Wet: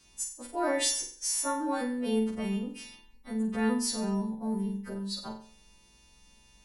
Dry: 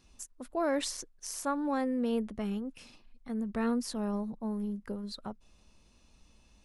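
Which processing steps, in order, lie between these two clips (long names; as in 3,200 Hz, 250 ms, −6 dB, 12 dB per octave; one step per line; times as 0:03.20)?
every partial snapped to a pitch grid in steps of 2 semitones
flutter between parallel walls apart 7.8 metres, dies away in 0.47 s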